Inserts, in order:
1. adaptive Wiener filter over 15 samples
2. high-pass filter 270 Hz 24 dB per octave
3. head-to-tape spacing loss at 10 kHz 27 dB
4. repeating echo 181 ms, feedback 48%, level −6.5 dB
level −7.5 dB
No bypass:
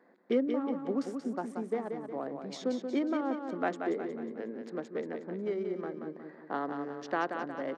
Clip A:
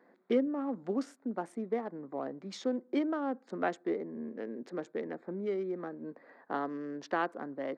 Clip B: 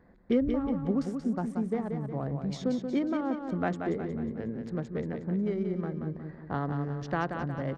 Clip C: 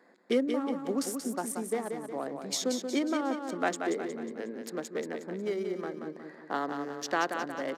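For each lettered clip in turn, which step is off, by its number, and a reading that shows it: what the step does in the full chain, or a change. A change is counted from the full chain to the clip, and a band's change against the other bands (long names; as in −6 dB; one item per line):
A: 4, echo-to-direct ratio −5.5 dB to none audible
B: 2, 125 Hz band +16.5 dB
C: 3, 4 kHz band +9.0 dB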